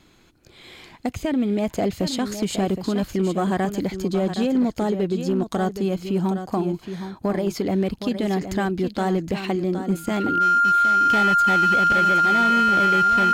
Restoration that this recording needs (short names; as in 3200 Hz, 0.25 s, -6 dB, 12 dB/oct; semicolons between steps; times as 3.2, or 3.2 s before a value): clip repair -14.5 dBFS; notch 1400 Hz, Q 30; inverse comb 0.767 s -9.5 dB